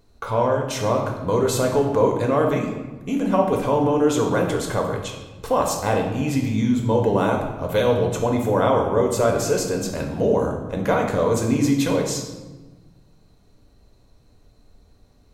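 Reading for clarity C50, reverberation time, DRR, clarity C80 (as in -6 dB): 5.0 dB, 1.2 s, 1.0 dB, 7.5 dB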